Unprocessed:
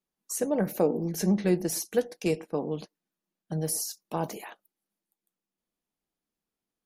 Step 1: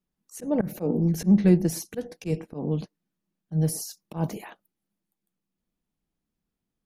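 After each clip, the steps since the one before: tone controls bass +13 dB, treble -3 dB; slow attack 114 ms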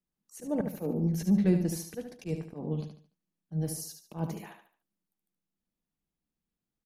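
feedback delay 73 ms, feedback 34%, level -7 dB; trim -6.5 dB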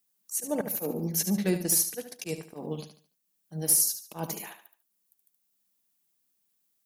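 RIAA curve recording; transient shaper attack +1 dB, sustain -4 dB; hard clipper -19.5 dBFS, distortion -24 dB; trim +4.5 dB

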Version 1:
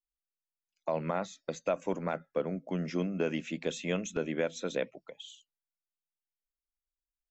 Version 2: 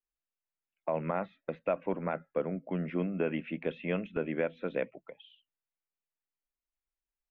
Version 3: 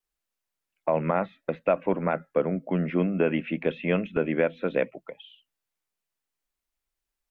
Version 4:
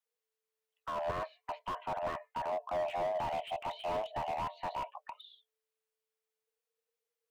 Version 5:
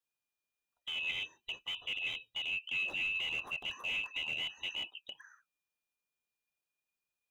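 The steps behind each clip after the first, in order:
steep low-pass 2.8 kHz 36 dB/octave
vibrato 0.69 Hz 7.8 cents; trim +7.5 dB
frequency shift +440 Hz; slew-rate limiter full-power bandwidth 36 Hz; trim -5.5 dB
split-band scrambler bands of 2 kHz; trim -1.5 dB

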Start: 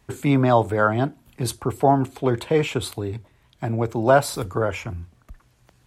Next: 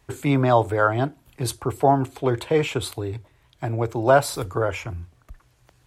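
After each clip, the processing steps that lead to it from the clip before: peaking EQ 210 Hz -14.5 dB 0.28 oct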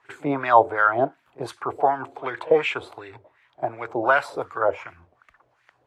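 pre-echo 47 ms -22 dB; wah-wah 2.7 Hz 550–2100 Hz, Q 2.3; trim +8.5 dB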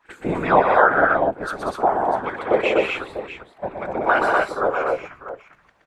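whisper effect; on a send: multi-tap echo 122/190/245/260/646 ms -5.5/-6.5/-3.5/-7/-12 dB

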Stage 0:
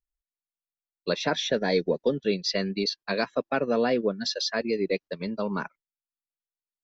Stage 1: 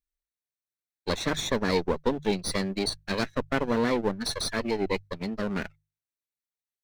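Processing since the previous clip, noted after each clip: comb filter that takes the minimum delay 0.51 ms; hum notches 50/100/150 Hz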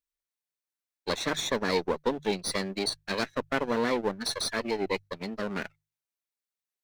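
bass shelf 170 Hz -11.5 dB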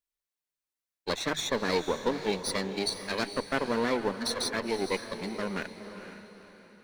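echo that smears into a reverb 490 ms, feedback 41%, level -10 dB; trim -1 dB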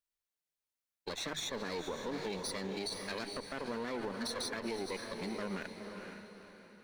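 peak limiter -26.5 dBFS, peak gain reduction 12 dB; trim -2.5 dB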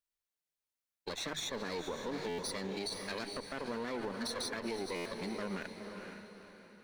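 buffer glitch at 2.28/4.95 s, samples 512, times 8

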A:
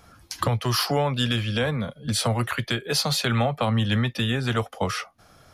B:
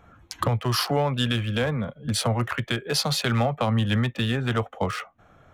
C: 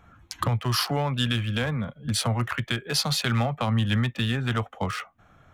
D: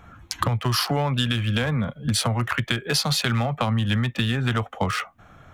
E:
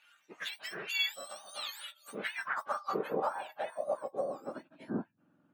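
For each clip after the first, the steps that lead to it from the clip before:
local Wiener filter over 9 samples
peaking EQ 490 Hz -6 dB 1.3 oct
compression, threshold -26 dBFS, peak gain reduction 7 dB; trim +7 dB
spectrum inverted on a logarithmic axis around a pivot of 1.4 kHz; band-pass sweep 3.1 kHz -> 230 Hz, 1.68–5.01 s

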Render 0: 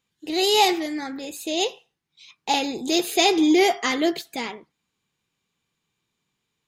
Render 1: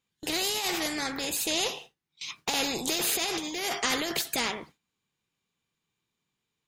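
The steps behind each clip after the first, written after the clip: gate with hold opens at -41 dBFS; compressor with a negative ratio -24 dBFS, ratio -1; spectrum-flattening compressor 2:1; trim -2.5 dB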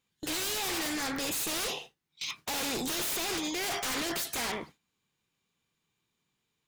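in parallel at -1 dB: peak limiter -20.5 dBFS, peak gain reduction 7 dB; on the sum: wavefolder -24 dBFS; trim -3.5 dB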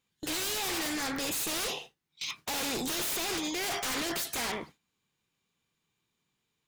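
no audible change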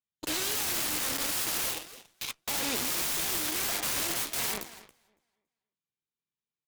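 feedback delay 279 ms, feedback 28%, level -6 dB; integer overflow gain 27.5 dB; Chebyshev shaper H 2 -22 dB, 3 -9 dB, 8 -32 dB, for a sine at -27.5 dBFS; trim +3.5 dB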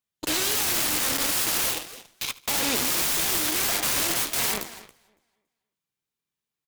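feedback delay 75 ms, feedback 39%, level -19.5 dB; trim +6 dB

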